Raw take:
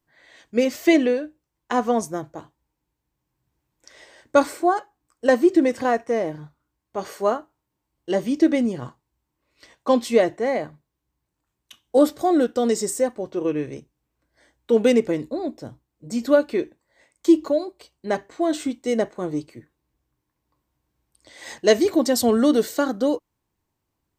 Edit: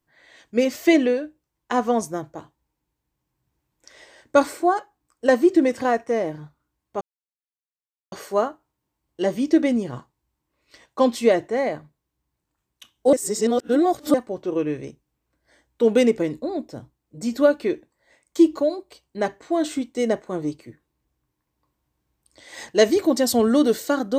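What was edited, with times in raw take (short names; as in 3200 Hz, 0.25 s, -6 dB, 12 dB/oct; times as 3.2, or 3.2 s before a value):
7.01 insert silence 1.11 s
12.02–13.03 reverse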